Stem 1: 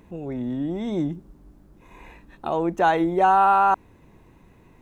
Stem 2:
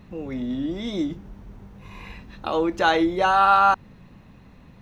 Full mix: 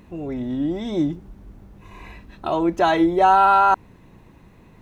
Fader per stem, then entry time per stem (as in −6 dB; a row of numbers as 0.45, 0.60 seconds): +1.5, −4.5 decibels; 0.00, 0.00 seconds